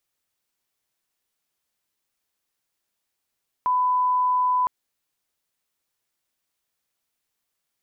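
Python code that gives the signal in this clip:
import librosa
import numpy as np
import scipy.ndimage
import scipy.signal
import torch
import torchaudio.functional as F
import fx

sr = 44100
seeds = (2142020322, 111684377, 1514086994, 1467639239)

y = fx.lineup_tone(sr, length_s=1.01, level_db=-18.0)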